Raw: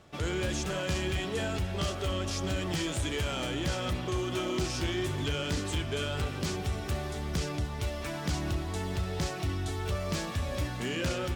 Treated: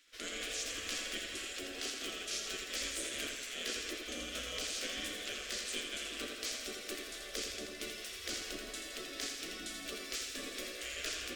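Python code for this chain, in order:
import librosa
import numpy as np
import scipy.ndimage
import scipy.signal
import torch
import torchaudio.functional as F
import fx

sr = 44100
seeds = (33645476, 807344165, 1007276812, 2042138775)

y = fx.spec_gate(x, sr, threshold_db=-15, keep='weak')
y = fx.fixed_phaser(y, sr, hz=370.0, stages=4)
y = fx.echo_feedback(y, sr, ms=83, feedback_pct=54, wet_db=-5.5)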